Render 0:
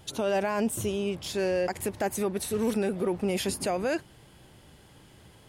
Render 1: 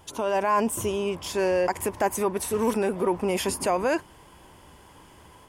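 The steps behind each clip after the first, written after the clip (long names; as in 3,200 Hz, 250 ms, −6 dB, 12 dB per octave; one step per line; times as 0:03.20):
automatic gain control gain up to 3.5 dB
thirty-one-band graphic EQ 125 Hz −12 dB, 200 Hz −4 dB, 1,000 Hz +12 dB, 4,000 Hz −8 dB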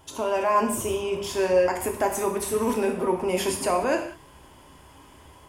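reverb whose tail is shaped and stops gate 220 ms falling, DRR 2 dB
level −1.5 dB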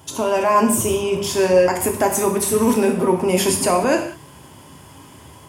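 high-pass filter 95 Hz 24 dB per octave
bass and treble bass +8 dB, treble +5 dB
level +5.5 dB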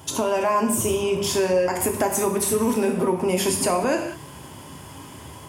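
downward compressor 2.5 to 1, threshold −24 dBFS, peak gain reduction 9.5 dB
level +2.5 dB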